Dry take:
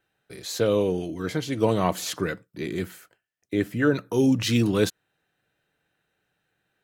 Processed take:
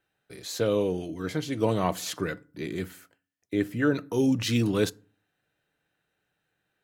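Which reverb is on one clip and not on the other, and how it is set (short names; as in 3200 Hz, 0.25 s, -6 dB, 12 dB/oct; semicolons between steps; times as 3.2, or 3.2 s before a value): FDN reverb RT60 0.41 s, low-frequency decay 1.45×, high-frequency decay 0.6×, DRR 19.5 dB; gain -3 dB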